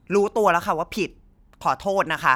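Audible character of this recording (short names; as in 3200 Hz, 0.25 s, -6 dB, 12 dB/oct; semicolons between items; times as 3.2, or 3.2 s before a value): noise floor -56 dBFS; spectral tilt -3.0 dB/oct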